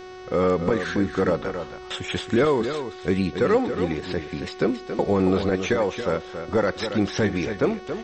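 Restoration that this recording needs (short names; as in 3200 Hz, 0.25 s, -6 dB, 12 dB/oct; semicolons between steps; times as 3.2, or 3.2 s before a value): de-hum 369.8 Hz, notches 17; inverse comb 0.276 s -9 dB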